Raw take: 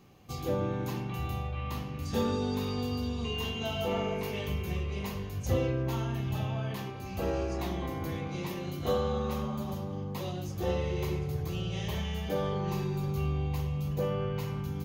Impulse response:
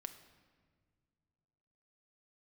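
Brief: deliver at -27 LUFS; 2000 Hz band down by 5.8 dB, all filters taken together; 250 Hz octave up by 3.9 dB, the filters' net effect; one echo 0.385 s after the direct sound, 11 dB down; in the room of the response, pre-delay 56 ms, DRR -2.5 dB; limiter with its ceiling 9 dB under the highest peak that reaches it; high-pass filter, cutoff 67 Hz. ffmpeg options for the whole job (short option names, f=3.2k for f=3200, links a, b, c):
-filter_complex "[0:a]highpass=67,equalizer=f=250:t=o:g=5.5,equalizer=f=2k:t=o:g=-8.5,alimiter=limit=-24dB:level=0:latency=1,aecho=1:1:385:0.282,asplit=2[a][b];[1:a]atrim=start_sample=2205,adelay=56[c];[b][c]afir=irnorm=-1:irlink=0,volume=6.5dB[d];[a][d]amix=inputs=2:normalize=0,volume=1.5dB"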